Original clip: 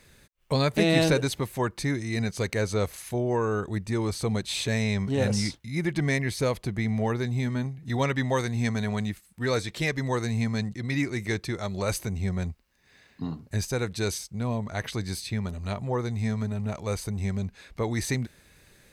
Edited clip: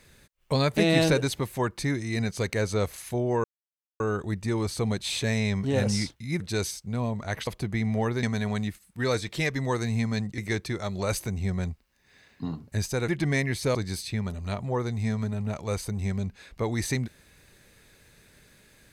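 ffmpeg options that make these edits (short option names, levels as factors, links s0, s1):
-filter_complex "[0:a]asplit=8[s0][s1][s2][s3][s4][s5][s6][s7];[s0]atrim=end=3.44,asetpts=PTS-STARTPTS,afade=t=out:st=3.436:d=0.004:c=hsin,apad=pad_dur=0.56[s8];[s1]atrim=start=3.44:end=5.842,asetpts=PTS-STARTPTS,afade=t=in:d=0.004:c=hsin[s9];[s2]atrim=start=13.868:end=14.942[s10];[s3]atrim=start=6.508:end=7.272[s11];[s4]atrim=start=8.648:end=10.802[s12];[s5]atrim=start=11.168:end=13.872[s13];[s6]atrim=start=5.838:end=6.512[s14];[s7]atrim=start=14.938[s15];[s8][s9]concat=n=2:v=0:a=1[s16];[s16][s10]acrossfade=d=0.004:c1=hsin:c2=hsin[s17];[s17][s11]acrossfade=d=0.004:c1=hsin:c2=hsin[s18];[s18][s12]acrossfade=d=0.004:c1=hsin:c2=hsin[s19];[s19][s13]acrossfade=d=0.004:c1=hsin:c2=hsin[s20];[s20][s14]acrossfade=d=0.004:c1=hsin:c2=hsin[s21];[s21][s15]acrossfade=d=0.004:c1=hsin:c2=hsin"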